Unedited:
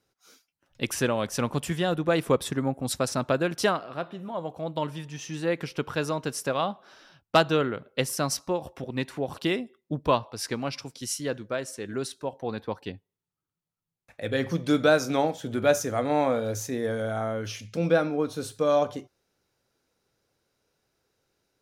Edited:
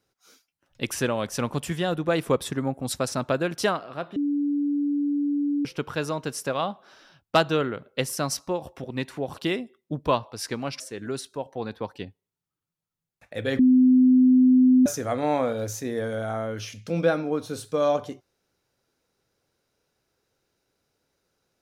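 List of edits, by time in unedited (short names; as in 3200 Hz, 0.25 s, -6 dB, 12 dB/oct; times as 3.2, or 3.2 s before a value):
4.16–5.65 bleep 288 Hz -21.5 dBFS
10.8–11.67 cut
14.46–15.73 bleep 255 Hz -13 dBFS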